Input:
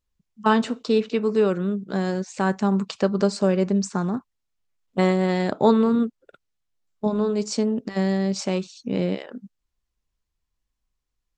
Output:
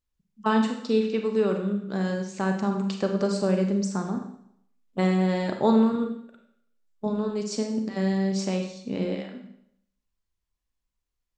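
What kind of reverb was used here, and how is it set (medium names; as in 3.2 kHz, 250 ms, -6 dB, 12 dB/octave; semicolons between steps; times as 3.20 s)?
Schroeder reverb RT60 0.69 s, combs from 32 ms, DRR 4 dB; trim -5 dB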